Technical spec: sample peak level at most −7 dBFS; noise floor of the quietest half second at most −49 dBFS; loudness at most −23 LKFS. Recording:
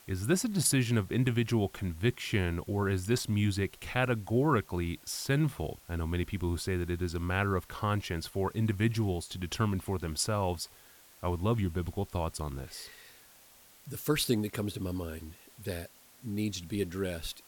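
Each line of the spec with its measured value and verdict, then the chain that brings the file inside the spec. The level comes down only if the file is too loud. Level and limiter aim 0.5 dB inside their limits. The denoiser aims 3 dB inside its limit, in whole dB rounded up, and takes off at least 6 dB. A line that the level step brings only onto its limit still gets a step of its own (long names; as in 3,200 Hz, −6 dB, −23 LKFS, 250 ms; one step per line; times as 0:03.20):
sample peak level −15.5 dBFS: in spec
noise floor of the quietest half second −58 dBFS: in spec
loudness −32.0 LKFS: in spec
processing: no processing needed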